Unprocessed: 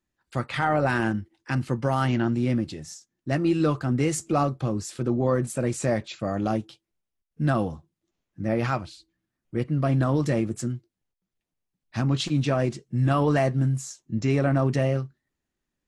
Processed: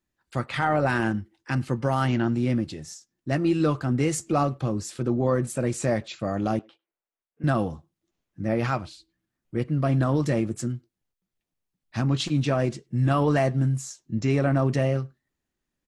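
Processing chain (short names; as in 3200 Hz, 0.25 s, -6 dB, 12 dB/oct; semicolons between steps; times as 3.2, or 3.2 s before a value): 6.59–7.44 three-band isolator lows -23 dB, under 340 Hz, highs -23 dB, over 2700 Hz; speakerphone echo 0.1 s, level -28 dB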